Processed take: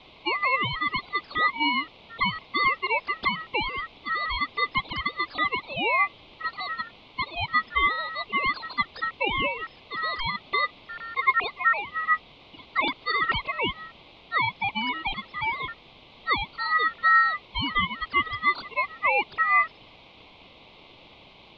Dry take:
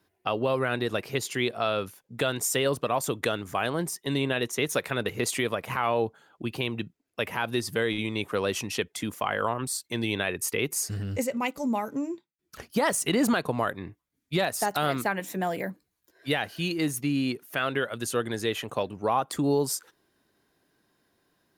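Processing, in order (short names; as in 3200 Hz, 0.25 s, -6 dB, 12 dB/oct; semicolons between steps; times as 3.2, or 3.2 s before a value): sine-wave speech; band noise 440–2300 Hz -53 dBFS; ring modulator 1600 Hz; gain +4.5 dB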